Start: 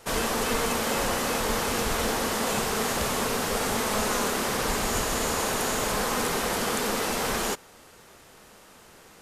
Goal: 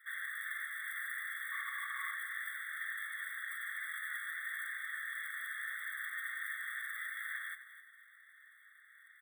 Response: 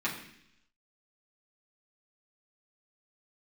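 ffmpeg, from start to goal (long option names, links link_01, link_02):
-filter_complex "[0:a]equalizer=frequency=520:width_type=o:width=0.92:gain=9,asplit=2[link_01][link_02];[link_02]acompressor=threshold=-35dB:ratio=8,volume=-0.5dB[link_03];[link_01][link_03]amix=inputs=2:normalize=0,asplit=3[link_04][link_05][link_06];[link_04]bandpass=frequency=530:width_type=q:width=8,volume=0dB[link_07];[link_05]bandpass=frequency=1840:width_type=q:width=8,volume=-6dB[link_08];[link_06]bandpass=frequency=2480:width_type=q:width=8,volume=-9dB[link_09];[link_07][link_08][link_09]amix=inputs=3:normalize=0,asettb=1/sr,asplit=3[link_10][link_11][link_12];[link_10]atrim=end=1.524[link_13];[link_11]atrim=start=1.52:end=2.15,asetpts=PTS-STARTPTS,afade=type=in:duration=0.004:curve=qsin,afade=type=out:start_time=0.626:duration=0.004:curve=qsin,aeval=exprs='0.126*(cos(1*acos(clip(val(0)/0.126,-1,1)))-cos(1*PI/2))+0.0112*(cos(6*acos(clip(val(0)/0.126,-1,1)))-cos(6*PI/2))':channel_layout=same[link_14];[link_12]atrim=start=2.146[link_15];[link_13][link_14]acrossfade=duration=0.004:curve1=hsin:curve2=qsin[link_16];[link_16][link_15]acrossfade=duration=0.004:curve1=qsin:curve2=hsin,acrusher=bits=6:mode=log:mix=0:aa=0.000001,asuperstop=centerf=5400:order=20:qfactor=1.2,aecho=1:1:256|512|768:0.224|0.0627|0.0176,afftfilt=real='re*eq(mod(floor(b*sr/1024/1100),2),1)':imag='im*eq(mod(floor(b*sr/1024/1100),2),1)':win_size=1024:overlap=0.75,volume=4dB"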